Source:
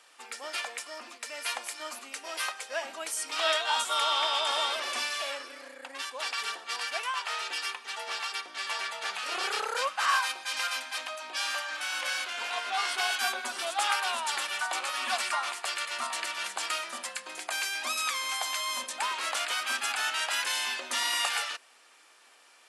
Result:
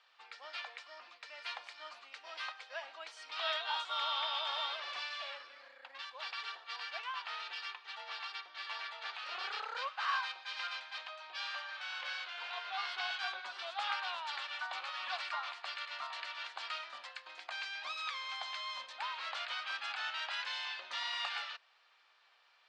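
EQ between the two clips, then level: HPF 810 Hz 12 dB/oct; ladder low-pass 4900 Hz, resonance 45%; high shelf 2200 Hz -11 dB; +3.5 dB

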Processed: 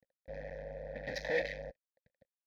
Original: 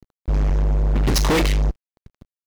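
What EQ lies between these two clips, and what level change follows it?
vowel filter e; fixed phaser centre 1900 Hz, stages 8; +2.0 dB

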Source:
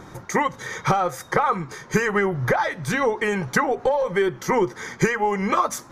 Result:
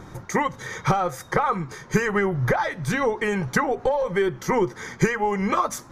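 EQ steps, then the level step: low shelf 140 Hz +7.5 dB; -2.0 dB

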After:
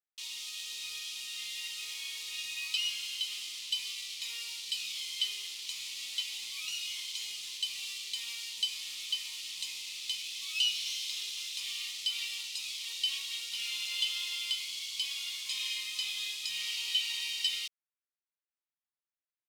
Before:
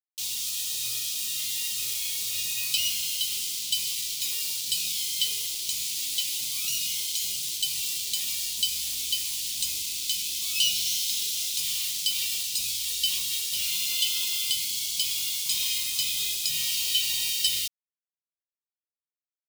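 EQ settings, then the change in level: band-pass 1700 Hz, Q 0.99; 0.0 dB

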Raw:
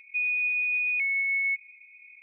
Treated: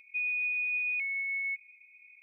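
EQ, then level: bell 1900 Hz -8.5 dB 0.48 oct; -2.0 dB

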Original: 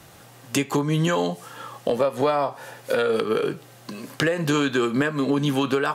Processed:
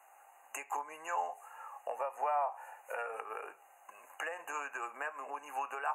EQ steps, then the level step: ladder high-pass 720 Hz, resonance 65%; brick-wall FIR band-stop 2900–6200 Hz; -4.0 dB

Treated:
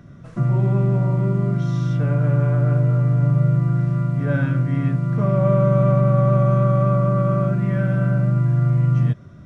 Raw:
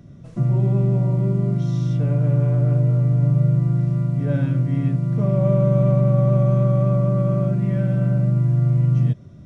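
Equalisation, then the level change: bell 1400 Hz +11 dB 1.2 oct; 0.0 dB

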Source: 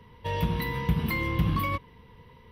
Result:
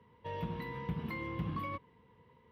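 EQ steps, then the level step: HPF 60 Hz; LPF 1500 Hz 6 dB/oct; low shelf 99 Hz -11.5 dB; -7.5 dB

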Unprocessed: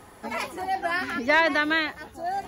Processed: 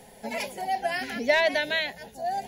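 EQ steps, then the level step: fixed phaser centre 320 Hz, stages 6; +2.5 dB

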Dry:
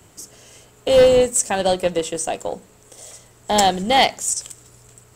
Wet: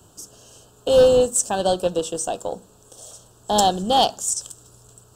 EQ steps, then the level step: Butterworth band-stop 2100 Hz, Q 1.6; -1.5 dB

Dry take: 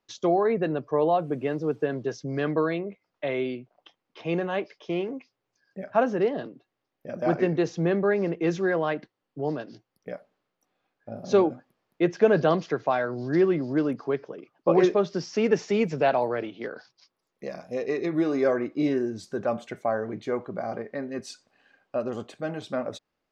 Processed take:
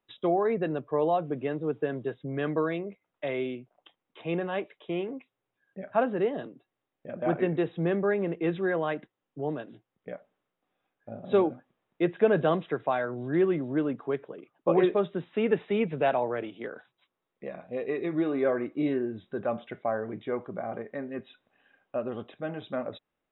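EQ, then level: brick-wall FIR low-pass 3900 Hz; -3.0 dB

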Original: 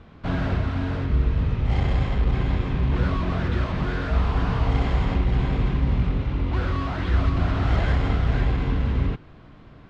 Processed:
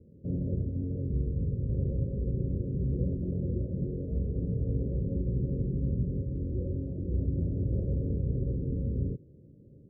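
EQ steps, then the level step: HPF 71 Hz; rippled Chebyshev low-pass 560 Hz, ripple 3 dB; -4.0 dB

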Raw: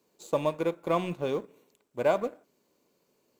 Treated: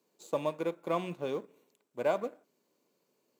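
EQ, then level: HPF 140 Hz 12 dB/oct; -4.5 dB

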